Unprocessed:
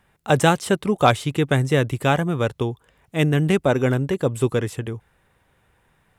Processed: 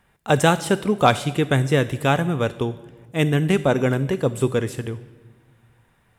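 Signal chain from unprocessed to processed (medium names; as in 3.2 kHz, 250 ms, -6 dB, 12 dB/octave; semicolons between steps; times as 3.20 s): on a send: treble shelf 3.5 kHz +12 dB + reverberation RT60 1.4 s, pre-delay 4 ms, DRR 13 dB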